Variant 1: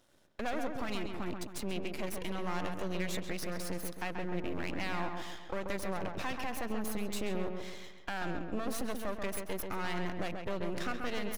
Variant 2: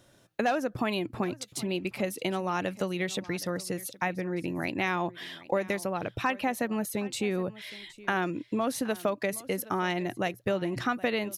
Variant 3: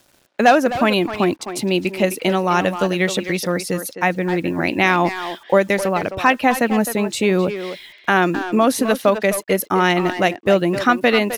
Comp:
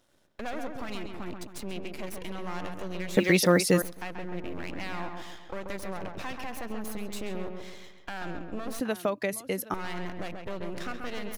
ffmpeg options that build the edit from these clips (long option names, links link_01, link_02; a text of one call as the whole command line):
ffmpeg -i take0.wav -i take1.wav -i take2.wav -filter_complex "[0:a]asplit=3[link_01][link_02][link_03];[link_01]atrim=end=3.172[link_04];[2:a]atrim=start=3.168:end=3.822[link_05];[link_02]atrim=start=3.818:end=8.802[link_06];[1:a]atrim=start=8.798:end=9.742[link_07];[link_03]atrim=start=9.738[link_08];[link_04][link_05]acrossfade=duration=0.004:curve1=hsin:curve2=hsin[link_09];[link_09][link_06]acrossfade=duration=0.004:curve1=hsin:curve2=hsin[link_10];[link_10][link_07]acrossfade=duration=0.004:curve1=hsin:curve2=hsin[link_11];[link_11][link_08]acrossfade=duration=0.004:curve1=hsin:curve2=hsin" out.wav